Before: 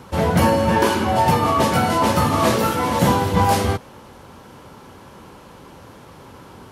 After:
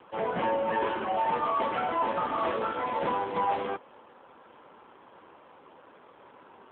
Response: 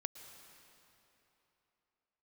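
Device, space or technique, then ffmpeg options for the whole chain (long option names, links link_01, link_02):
telephone: -af "highpass=370,lowpass=3100,asoftclip=type=tanh:threshold=-12.5dB,volume=-6dB" -ar 8000 -c:a libopencore_amrnb -b:a 7400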